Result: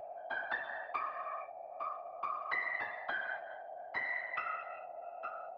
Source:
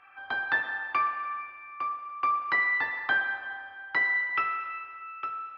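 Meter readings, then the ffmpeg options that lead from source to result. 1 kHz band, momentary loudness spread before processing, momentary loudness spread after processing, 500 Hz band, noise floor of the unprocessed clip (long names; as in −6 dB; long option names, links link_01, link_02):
−9.5 dB, 13 LU, 10 LU, +4.0 dB, −46 dBFS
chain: -filter_complex "[0:a]equalizer=frequency=770:width=1:gain=5.5,agate=range=-33dB:threshold=-29dB:ratio=3:detection=peak,acompressor=mode=upward:threshold=-47dB:ratio=2.5,aeval=exprs='val(0)+0.02*sin(2*PI*690*n/s)':channel_layout=same,acrossover=split=420|3000[link_01][link_02][link_03];[link_02]acompressor=threshold=-25dB:ratio=6[link_04];[link_01][link_04][link_03]amix=inputs=3:normalize=0,afftfilt=real='hypot(re,im)*cos(2*PI*random(0))':imag='hypot(re,im)*sin(2*PI*random(1))':win_size=512:overlap=0.75,volume=-4.5dB"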